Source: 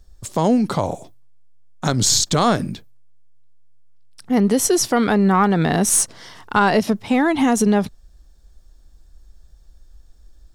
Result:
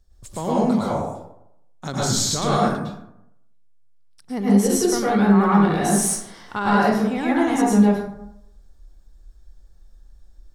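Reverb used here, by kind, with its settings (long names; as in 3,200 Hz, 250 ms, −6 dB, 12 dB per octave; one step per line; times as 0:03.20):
dense smooth reverb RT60 0.79 s, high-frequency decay 0.45×, pre-delay 95 ms, DRR −7 dB
level −10.5 dB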